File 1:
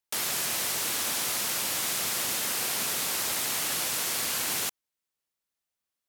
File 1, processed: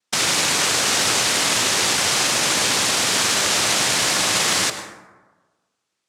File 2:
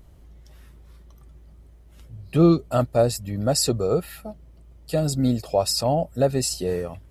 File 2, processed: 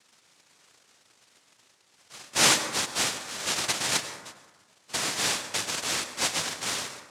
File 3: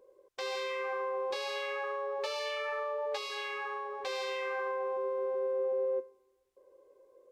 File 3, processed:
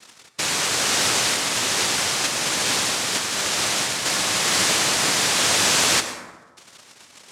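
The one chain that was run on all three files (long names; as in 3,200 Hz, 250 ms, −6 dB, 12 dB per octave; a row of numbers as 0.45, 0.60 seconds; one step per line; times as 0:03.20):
thirty-one-band graphic EQ 200 Hz −11 dB, 630 Hz −9 dB, 1,000 Hz +3 dB, 1,600 Hz +3 dB, 4,000 Hz −10 dB
cochlear-implant simulation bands 1
dense smooth reverb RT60 1.3 s, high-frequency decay 0.4×, pre-delay 85 ms, DRR 9 dB
normalise the peak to −6 dBFS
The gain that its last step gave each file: +13.5, −4.5, +14.5 decibels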